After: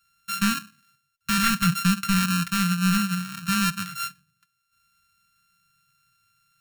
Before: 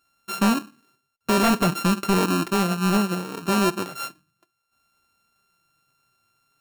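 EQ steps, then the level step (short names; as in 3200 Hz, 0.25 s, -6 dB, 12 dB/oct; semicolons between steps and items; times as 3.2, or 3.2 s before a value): elliptic band-stop 180–1400 Hz, stop band 80 dB; +2.5 dB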